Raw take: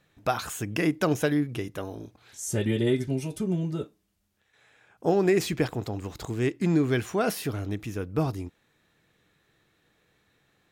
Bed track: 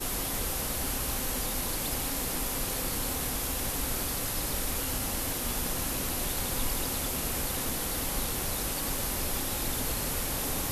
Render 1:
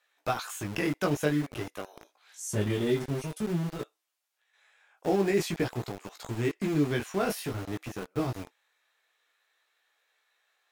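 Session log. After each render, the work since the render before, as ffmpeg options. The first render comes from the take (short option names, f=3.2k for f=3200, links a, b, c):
-filter_complex "[0:a]flanger=delay=15.5:depth=5.7:speed=0.5,acrossover=split=600|3800[a][b][c];[a]aeval=exprs='val(0)*gte(abs(val(0)),0.0168)':c=same[d];[d][b][c]amix=inputs=3:normalize=0"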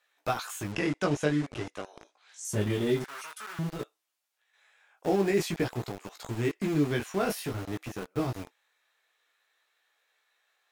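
-filter_complex "[0:a]asettb=1/sr,asplit=3[a][b][c];[a]atrim=end=0.724[d];[b]atrim=start=0.72:end=2.45,asetpts=PTS-STARTPTS,afade=t=in:d=0.004:c=qsin,afade=t=out:st=1.726:d=0.004:c=qsin,lowpass=f=8.7k:w=0.5412,lowpass=f=8.7k:w=1.3066[e];[c]atrim=start=2.446[f];[d][e]acrossfade=d=0.004:c1=hsin:c2=qsin[g];[g][f]acrossfade=d=0.004:c1=qsin:c2=hsin,asettb=1/sr,asplit=3[h][i][j];[h]atrim=end=3.044[k];[i]atrim=start=3.04:end=3.59,asetpts=PTS-STARTPTS,afade=t=in:d=0.004:c=qsin,afade=t=out:st=0.546:d=0.004:c=qsin,highpass=f=1.3k:t=q:w=3.1[l];[j]atrim=start=3.586[m];[k][l]acrossfade=d=0.004:c1=hsin:c2=qsin[n];[n][m]acrossfade=d=0.004:c1=qsin:c2=hsin"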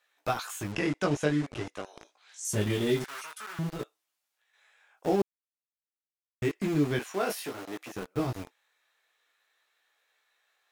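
-filter_complex "[0:a]asplit=3[a][b][c];[a]afade=t=out:st=1.85:d=0.02[d];[b]adynamicequalizer=threshold=0.00316:dfrequency=2000:dqfactor=0.7:tfrequency=2000:tqfactor=0.7:attack=5:release=100:ratio=0.375:range=2:mode=boostabove:tftype=highshelf,afade=t=in:st=1.85:d=0.02,afade=t=out:st=3.19:d=0.02[e];[c]afade=t=in:st=3.19:d=0.02[f];[d][e][f]amix=inputs=3:normalize=0,asettb=1/sr,asplit=3[g][h][i];[g]atrim=end=6.994[j];[h]atrim=start=6.99:end=7.94,asetpts=PTS-STARTPTS,afade=t=in:d=0.004:c=qsin,afade=t=out:st=0.946:d=0.004:c=qsin,highpass=310[k];[i]atrim=start=7.936[l];[j][k]acrossfade=d=0.004:c1=hsin:c2=qsin[m];[m][l]acrossfade=d=0.004:c1=qsin:c2=hsin,asplit=3[n][o][p];[n]atrim=end=5.22,asetpts=PTS-STARTPTS,afade=t=out:st=5.216:d=0.004:c=hsin[q];[o]atrim=start=5.22:end=6.42,asetpts=PTS-STARTPTS,volume=0[r];[p]atrim=start=6.42,asetpts=PTS-STARTPTS,afade=t=in:d=0.004:c=hsin[s];[q][r][s]concat=n=3:v=0:a=1"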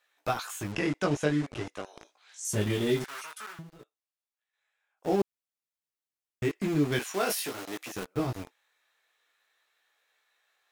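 -filter_complex "[0:a]asettb=1/sr,asplit=3[a][b][c];[a]atrim=end=6.924[d];[b]atrim=start=6.92:end=8.05,asetpts=PTS-STARTPTS,afade=t=in:d=0.004:c=qsin,afade=t=out:st=1.126:d=0.004:c=qsin,highshelf=f=2.4k:g=7.5[e];[c]atrim=start=8.046[f];[d][e]acrossfade=d=0.004:c1=hsin:c2=qsin[g];[g][f]acrossfade=d=0.004:c1=qsin:c2=hsin,asplit=3[h][i][j];[h]atrim=end=3.63,asetpts=PTS-STARTPTS,afade=t=out:st=3.46:d=0.17:silence=0.158489[k];[i]atrim=start=3.63:end=4.96,asetpts=PTS-STARTPTS,volume=-16dB[l];[j]atrim=start=4.96,asetpts=PTS-STARTPTS,afade=t=in:d=0.17:silence=0.158489[m];[k][l][m]concat=n=3:v=0:a=1"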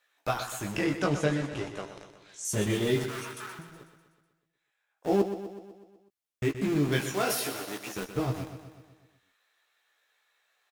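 -filter_complex "[0:a]asplit=2[a][b];[b]adelay=15,volume=-9dB[c];[a][c]amix=inputs=2:normalize=0,aecho=1:1:124|248|372|496|620|744|868:0.299|0.17|0.097|0.0553|0.0315|0.018|0.0102"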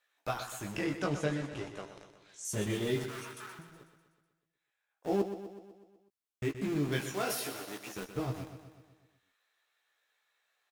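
-af "volume=-5.5dB"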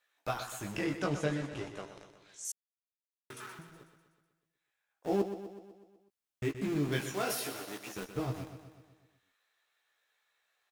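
-filter_complex "[0:a]asplit=3[a][b][c];[a]atrim=end=2.52,asetpts=PTS-STARTPTS,afade=t=out:st=2.516:d=0.004:c=hsin[d];[b]atrim=start=2.52:end=3.3,asetpts=PTS-STARTPTS,volume=0[e];[c]atrim=start=3.3,asetpts=PTS-STARTPTS,afade=t=in:d=0.004:c=hsin[f];[d][e][f]concat=n=3:v=0:a=1"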